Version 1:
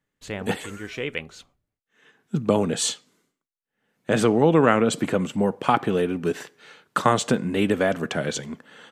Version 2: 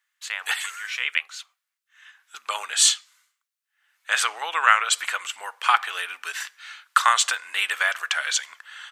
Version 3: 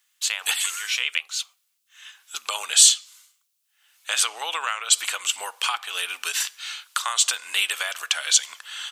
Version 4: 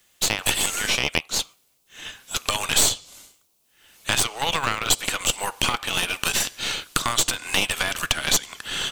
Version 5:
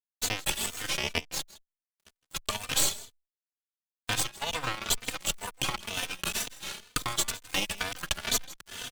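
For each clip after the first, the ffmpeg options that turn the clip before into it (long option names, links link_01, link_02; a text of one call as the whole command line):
ffmpeg -i in.wav -af "highpass=frequency=1200:width=0.5412,highpass=frequency=1200:width=1.3066,volume=8dB" out.wav
ffmpeg -i in.wav -af "tiltshelf=frequency=1500:gain=6,acompressor=threshold=-32dB:ratio=2.5,aexciter=amount=5.6:drive=4.5:freq=2600,volume=1.5dB" out.wav
ffmpeg -i in.wav -filter_complex "[0:a]acrossover=split=430[link_01][link_02];[link_02]acompressor=threshold=-29dB:ratio=3[link_03];[link_01][link_03]amix=inputs=2:normalize=0,aeval=exprs='0.355*(cos(1*acos(clip(val(0)/0.355,-1,1)))-cos(1*PI/2))+0.0562*(cos(6*acos(clip(val(0)/0.355,-1,1)))-cos(6*PI/2))':channel_layout=same,asplit=2[link_04][link_05];[link_05]acrusher=samples=25:mix=1:aa=0.000001,volume=-12dB[link_06];[link_04][link_06]amix=inputs=2:normalize=0,volume=7dB" out.wav
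ffmpeg -i in.wav -filter_complex "[0:a]aeval=exprs='sgn(val(0))*max(abs(val(0))-0.0398,0)':channel_layout=same,aecho=1:1:161:0.112,asplit=2[link_01][link_02];[link_02]adelay=3.2,afreqshift=2.1[link_03];[link_01][link_03]amix=inputs=2:normalize=1,volume=-2.5dB" out.wav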